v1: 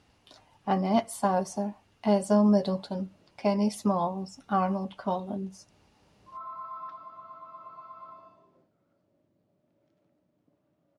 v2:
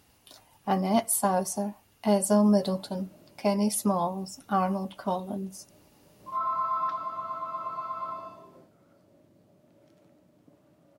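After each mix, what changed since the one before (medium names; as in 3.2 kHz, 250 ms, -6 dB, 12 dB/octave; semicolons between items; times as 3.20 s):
background +11.0 dB; master: remove distance through air 88 m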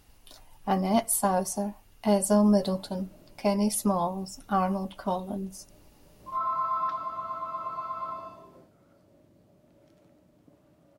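master: remove high-pass 96 Hz 12 dB/octave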